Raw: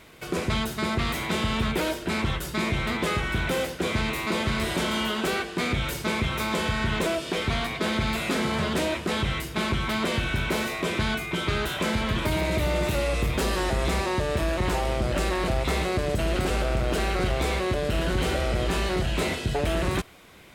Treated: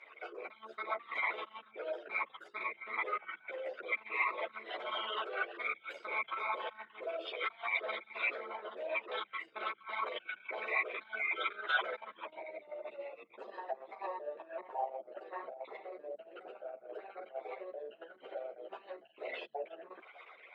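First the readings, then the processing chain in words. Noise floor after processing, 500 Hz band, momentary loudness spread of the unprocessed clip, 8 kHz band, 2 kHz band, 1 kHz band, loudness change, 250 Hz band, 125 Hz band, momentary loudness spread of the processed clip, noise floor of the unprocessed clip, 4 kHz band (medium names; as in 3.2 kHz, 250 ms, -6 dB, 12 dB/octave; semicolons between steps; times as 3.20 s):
-64 dBFS, -14.0 dB, 2 LU, under -40 dB, -8.5 dB, -10.0 dB, -13.0 dB, -30.0 dB, under -40 dB, 14 LU, -37 dBFS, -17.0 dB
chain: resonances exaggerated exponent 3; low-pass 4.8 kHz 12 dB/octave; in parallel at +1 dB: compressor with a negative ratio -32 dBFS; on the sum: high-pass 670 Hz 24 dB/octave; three-phase chorus; trim -4 dB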